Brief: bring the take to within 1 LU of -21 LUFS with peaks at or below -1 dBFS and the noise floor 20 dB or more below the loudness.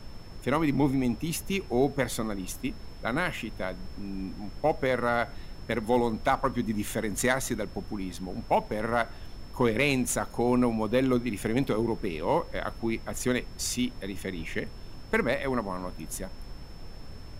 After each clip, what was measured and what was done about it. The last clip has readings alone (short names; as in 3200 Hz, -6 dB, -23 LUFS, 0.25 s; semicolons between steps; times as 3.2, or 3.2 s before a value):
steady tone 5300 Hz; tone level -56 dBFS; noise floor -43 dBFS; noise floor target -50 dBFS; loudness -29.5 LUFS; peak -12.5 dBFS; loudness target -21.0 LUFS
-> notch 5300 Hz, Q 30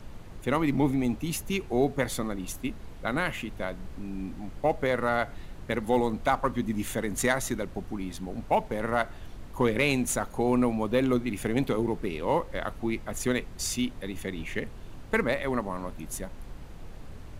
steady tone none; noise floor -44 dBFS; noise floor target -50 dBFS
-> noise print and reduce 6 dB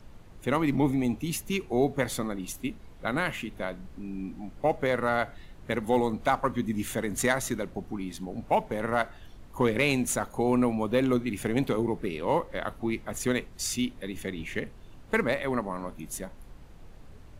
noise floor -49 dBFS; noise floor target -50 dBFS
-> noise print and reduce 6 dB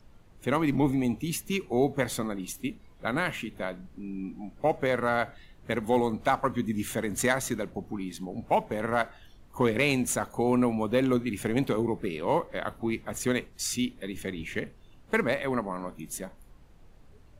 noise floor -54 dBFS; loudness -29.5 LUFS; peak -12.5 dBFS; loudness target -21.0 LUFS
-> gain +8.5 dB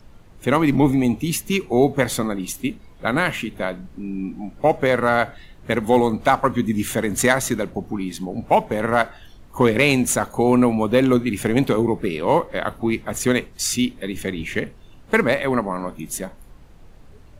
loudness -21.0 LUFS; peak -4.0 dBFS; noise floor -46 dBFS